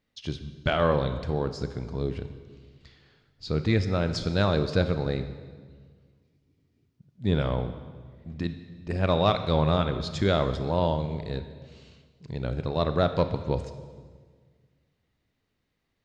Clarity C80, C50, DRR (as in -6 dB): 12.0 dB, 10.5 dB, 9.0 dB